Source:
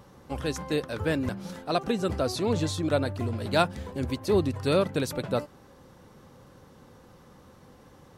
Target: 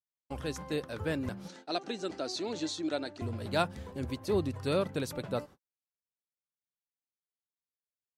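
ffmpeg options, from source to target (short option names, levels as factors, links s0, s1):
-filter_complex "[0:a]agate=range=0.00158:threshold=0.00794:ratio=16:detection=peak,asettb=1/sr,asplit=3[s0][s1][s2];[s0]atrim=end=1.484[s3];[s1]atrim=start=1.48:end=3.22,asetpts=PTS-STARTPTS,afade=t=in:d=0.004:c=qsin,afade=t=out:st=1.736:d=0.004:c=qsin,highpass=320,equalizer=f=320:t=q:w=4:g=6,equalizer=f=500:t=q:w=4:g=-6,equalizer=f=1100:t=q:w=4:g=-8,equalizer=f=4200:t=q:w=4:g=5,equalizer=f=6300:t=q:w=4:g=4,lowpass=f=8200:w=0.5412,lowpass=f=8200:w=1.3066[s4];[s2]atrim=start=3.216[s5];[s3][s4]acrossfade=d=0.004:c1=hsin:c2=qsin[s6];[s6][s5]acrossfade=d=0.004:c1=qsin:c2=hsin,volume=0.501"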